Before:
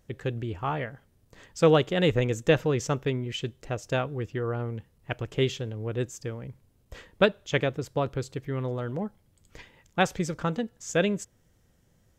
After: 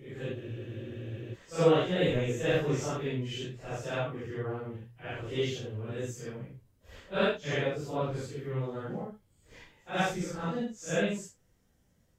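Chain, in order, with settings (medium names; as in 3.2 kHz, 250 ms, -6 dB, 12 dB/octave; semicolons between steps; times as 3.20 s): phase randomisation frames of 200 ms; hum notches 60/120 Hz; spectral freeze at 0.37 s, 0.96 s; trim -4 dB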